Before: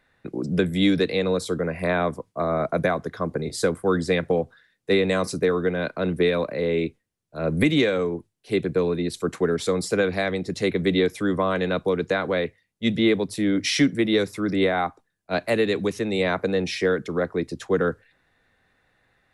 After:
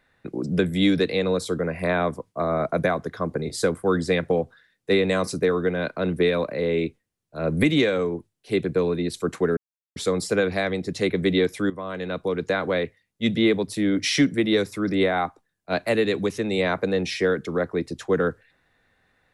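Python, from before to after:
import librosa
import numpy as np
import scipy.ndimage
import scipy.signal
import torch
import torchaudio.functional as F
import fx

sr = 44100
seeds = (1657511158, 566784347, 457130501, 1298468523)

y = fx.edit(x, sr, fx.insert_silence(at_s=9.57, length_s=0.39),
    fx.fade_in_from(start_s=11.31, length_s=0.89, floor_db=-14.0), tone=tone)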